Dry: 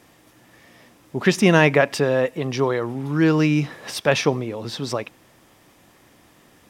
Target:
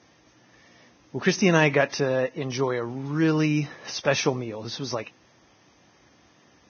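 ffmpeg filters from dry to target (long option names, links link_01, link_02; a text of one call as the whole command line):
ffmpeg -i in.wav -af "aexciter=amount=1.2:drive=3.6:freq=6100,volume=-4.5dB" -ar 16000 -c:a libvorbis -b:a 16k out.ogg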